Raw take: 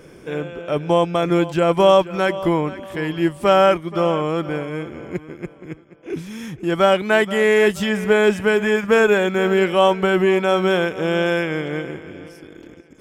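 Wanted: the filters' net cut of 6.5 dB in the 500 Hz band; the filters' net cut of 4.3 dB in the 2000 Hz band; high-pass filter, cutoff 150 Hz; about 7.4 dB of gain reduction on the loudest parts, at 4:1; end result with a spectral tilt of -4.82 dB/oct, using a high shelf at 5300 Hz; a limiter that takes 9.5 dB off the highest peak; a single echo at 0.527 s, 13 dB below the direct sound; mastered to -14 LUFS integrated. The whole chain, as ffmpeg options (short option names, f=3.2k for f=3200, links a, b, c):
-af "highpass=150,equalizer=f=500:t=o:g=-8,equalizer=f=2k:t=o:g=-6.5,highshelf=f=5.3k:g=9,acompressor=threshold=-23dB:ratio=4,alimiter=limit=-21dB:level=0:latency=1,aecho=1:1:527:0.224,volume=18dB"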